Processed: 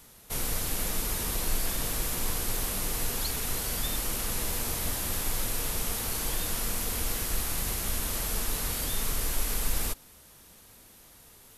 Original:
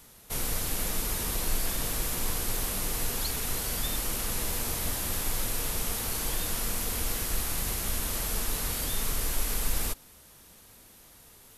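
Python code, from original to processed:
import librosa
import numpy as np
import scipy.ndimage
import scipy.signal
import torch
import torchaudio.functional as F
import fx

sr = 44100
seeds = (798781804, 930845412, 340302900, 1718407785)

y = fx.dmg_crackle(x, sr, seeds[0], per_s=100.0, level_db=-45.0, at=(7.13, 8.23), fade=0.02)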